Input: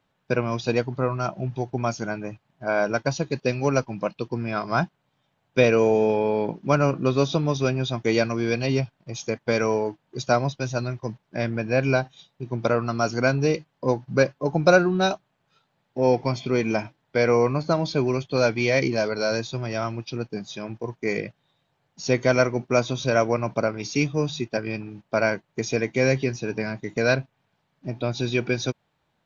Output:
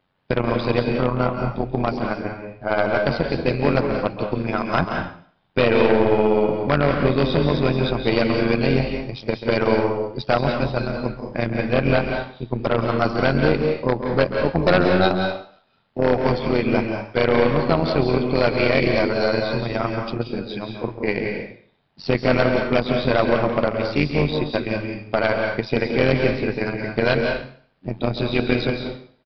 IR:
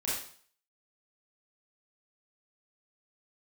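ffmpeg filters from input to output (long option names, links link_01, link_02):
-filter_complex "[0:a]aeval=exprs='(tanh(4.47*val(0)+0.6)-tanh(0.6))/4.47':channel_layout=same,tremolo=f=91:d=0.788,aeval=exprs='0.2*(abs(mod(val(0)/0.2+3,4)-2)-1)':channel_layout=same,asplit=2[link_01][link_02];[1:a]atrim=start_sample=2205,adelay=136[link_03];[link_02][link_03]afir=irnorm=-1:irlink=0,volume=-8.5dB[link_04];[link_01][link_04]amix=inputs=2:normalize=0,aresample=11025,aresample=44100,volume=8.5dB"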